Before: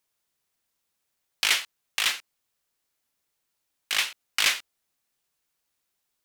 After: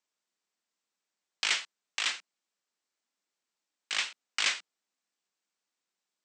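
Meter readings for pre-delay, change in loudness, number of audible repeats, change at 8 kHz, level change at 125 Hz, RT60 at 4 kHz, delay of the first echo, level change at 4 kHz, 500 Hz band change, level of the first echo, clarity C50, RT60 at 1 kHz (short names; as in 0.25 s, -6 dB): none, -5.5 dB, none, -6.5 dB, n/a, none, none, -6.0 dB, -6.0 dB, none, none, none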